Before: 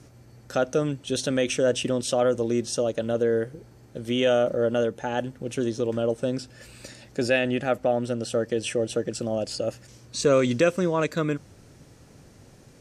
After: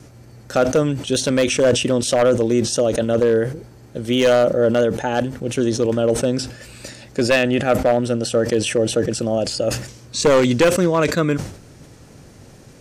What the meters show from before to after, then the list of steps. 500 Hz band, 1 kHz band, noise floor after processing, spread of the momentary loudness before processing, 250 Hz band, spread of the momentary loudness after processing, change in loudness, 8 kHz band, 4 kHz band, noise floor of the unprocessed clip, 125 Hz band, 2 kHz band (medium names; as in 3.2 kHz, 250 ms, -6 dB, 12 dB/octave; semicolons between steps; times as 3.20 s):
+7.0 dB, +7.5 dB, -45 dBFS, 11 LU, +7.5 dB, 11 LU, +7.0 dB, +9.0 dB, +8.0 dB, -52 dBFS, +8.0 dB, +7.0 dB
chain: one-sided wavefolder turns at -15.5 dBFS; vibrato 4.4 Hz 28 cents; decay stretcher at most 96 dB/s; trim +7 dB